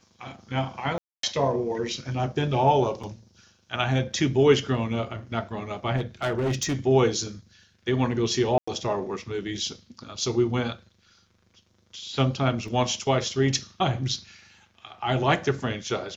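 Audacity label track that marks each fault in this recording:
0.980000	1.230000	drop-out 253 ms
3.030000	3.040000	drop-out 5 ms
5.960000	6.750000	clipping −21.5 dBFS
8.580000	8.680000	drop-out 95 ms
12.680000	12.680000	drop-out 2.4 ms

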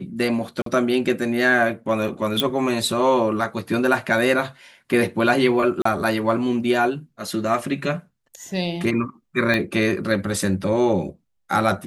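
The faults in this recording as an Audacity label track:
0.620000	0.660000	drop-out 43 ms
2.400000	2.400000	click −6 dBFS
5.820000	5.850000	drop-out 34 ms
9.540000	9.540000	click −9 dBFS

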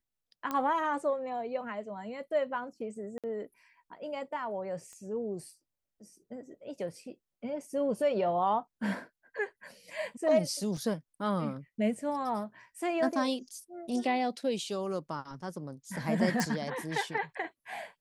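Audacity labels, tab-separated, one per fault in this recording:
0.510000	0.510000	click −19 dBFS
3.180000	3.240000	drop-out 57 ms
4.930000	4.930000	click −35 dBFS
10.770000	10.770000	drop-out 2.1 ms
16.400000	16.400000	click

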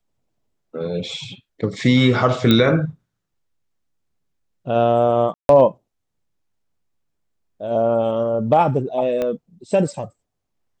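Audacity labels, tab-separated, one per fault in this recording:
2.510000	2.510000	click −4 dBFS
5.340000	5.490000	drop-out 152 ms
9.220000	9.220000	click −12 dBFS

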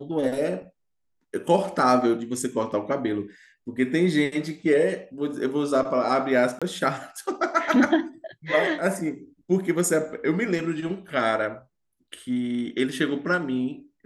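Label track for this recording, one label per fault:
6.590000	6.620000	drop-out 26 ms

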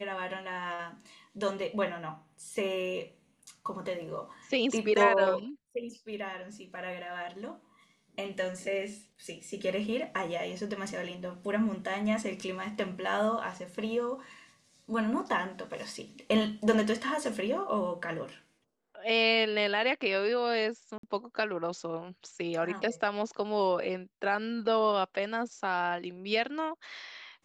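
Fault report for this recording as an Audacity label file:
20.980000	21.030000	drop-out 53 ms

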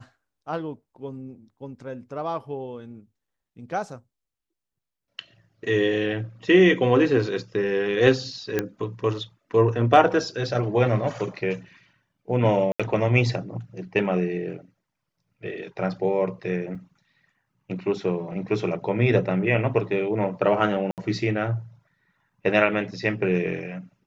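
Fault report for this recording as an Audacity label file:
8.590000	8.590000	click −10 dBFS
12.720000	12.800000	drop-out 76 ms
16.750000	16.750000	drop-out 4.8 ms
20.910000	20.980000	drop-out 68 ms

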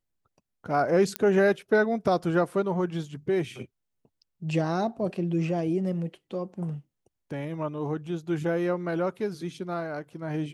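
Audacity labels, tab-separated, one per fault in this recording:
1.160000	1.160000	click −11 dBFS

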